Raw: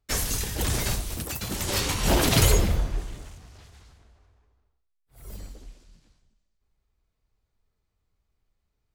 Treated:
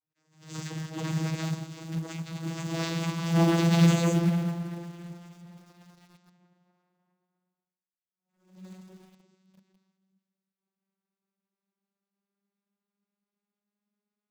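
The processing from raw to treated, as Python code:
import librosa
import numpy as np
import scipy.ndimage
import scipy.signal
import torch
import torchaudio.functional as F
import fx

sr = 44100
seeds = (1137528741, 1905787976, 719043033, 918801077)

p1 = fx.vocoder_glide(x, sr, note=51, semitones=5)
p2 = fx.peak_eq(p1, sr, hz=470.0, db=-6.5, octaves=0.68)
p3 = fx.stretch_vocoder(p2, sr, factor=1.6)
p4 = fx.quant_companded(p3, sr, bits=4)
p5 = p3 + F.gain(torch.from_numpy(p4), -8.0).numpy()
y = fx.attack_slew(p5, sr, db_per_s=120.0)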